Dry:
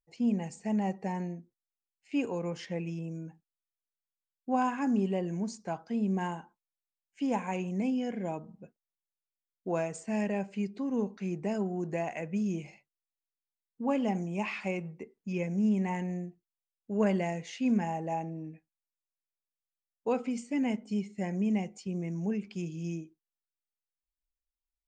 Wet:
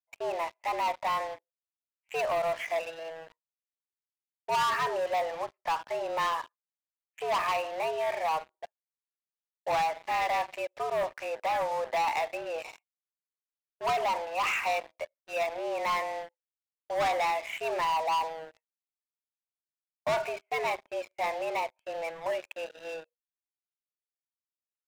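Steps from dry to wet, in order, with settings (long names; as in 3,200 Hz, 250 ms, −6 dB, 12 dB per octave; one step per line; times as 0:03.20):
single-sideband voice off tune +160 Hz 470–2,400 Hz
leveller curve on the samples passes 5
level −4.5 dB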